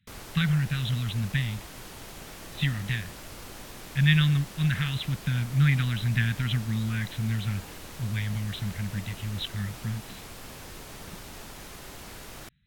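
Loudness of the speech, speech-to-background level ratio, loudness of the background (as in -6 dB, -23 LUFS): -28.5 LUFS, 14.0 dB, -42.5 LUFS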